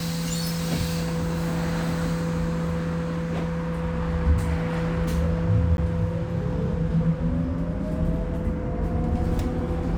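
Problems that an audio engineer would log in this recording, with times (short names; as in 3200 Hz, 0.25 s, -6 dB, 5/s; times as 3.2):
5.77–5.78 gap 11 ms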